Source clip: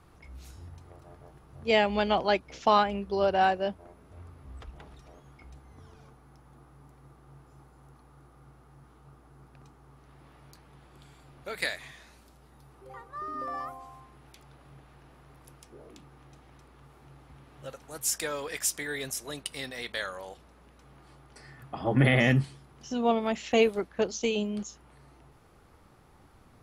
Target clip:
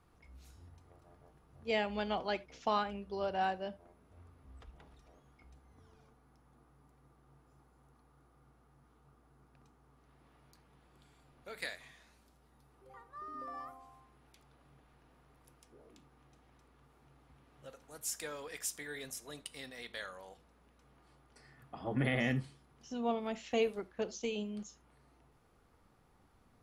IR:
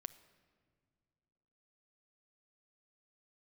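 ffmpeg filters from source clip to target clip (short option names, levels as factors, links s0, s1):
-filter_complex "[1:a]atrim=start_sample=2205,atrim=end_sample=6615,asetrate=70560,aresample=44100[s0];[0:a][s0]afir=irnorm=-1:irlink=0,volume=0.841"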